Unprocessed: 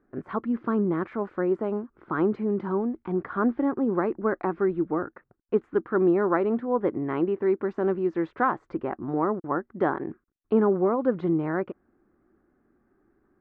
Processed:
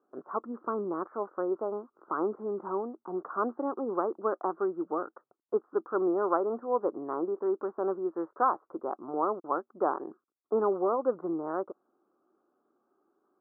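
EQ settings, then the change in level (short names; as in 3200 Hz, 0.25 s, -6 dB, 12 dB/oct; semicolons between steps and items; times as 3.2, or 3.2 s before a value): HPF 480 Hz 12 dB/oct; elliptic low-pass 1300 Hz, stop band 50 dB; 0.0 dB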